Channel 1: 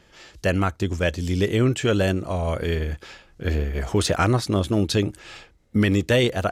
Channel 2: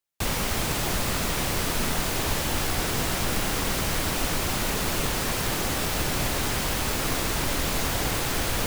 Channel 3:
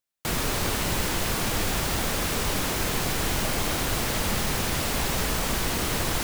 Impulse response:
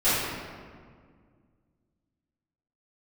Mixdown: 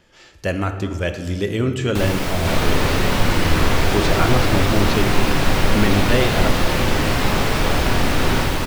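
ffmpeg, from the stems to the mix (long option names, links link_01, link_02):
-filter_complex "[0:a]volume=-1.5dB,asplit=2[link_01][link_02];[link_02]volume=-23dB[link_03];[1:a]adelay=1750,volume=1dB,asplit=2[link_04][link_05];[link_05]volume=-18.5dB[link_06];[2:a]adelay=2200,volume=-1.5dB,asplit=2[link_07][link_08];[link_08]volume=-9.5dB[link_09];[3:a]atrim=start_sample=2205[link_10];[link_03][link_06][link_09]amix=inputs=3:normalize=0[link_11];[link_11][link_10]afir=irnorm=-1:irlink=0[link_12];[link_01][link_04][link_07][link_12]amix=inputs=4:normalize=0,acrossover=split=4800[link_13][link_14];[link_14]acompressor=threshold=-34dB:ratio=4:attack=1:release=60[link_15];[link_13][link_15]amix=inputs=2:normalize=0"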